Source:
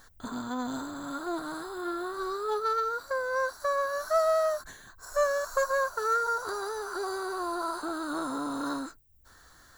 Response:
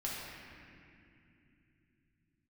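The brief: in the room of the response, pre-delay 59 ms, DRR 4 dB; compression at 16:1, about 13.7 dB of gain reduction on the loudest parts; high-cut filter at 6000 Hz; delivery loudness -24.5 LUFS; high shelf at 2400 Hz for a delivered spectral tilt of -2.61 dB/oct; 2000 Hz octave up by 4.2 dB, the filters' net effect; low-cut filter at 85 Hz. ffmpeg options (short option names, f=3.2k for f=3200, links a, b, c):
-filter_complex "[0:a]highpass=85,lowpass=6k,equalizer=f=2k:t=o:g=8.5,highshelf=f=2.4k:g=-5.5,acompressor=threshold=-34dB:ratio=16,asplit=2[a][b];[1:a]atrim=start_sample=2205,adelay=59[c];[b][c]afir=irnorm=-1:irlink=0,volume=-7dB[d];[a][d]amix=inputs=2:normalize=0,volume=12.5dB"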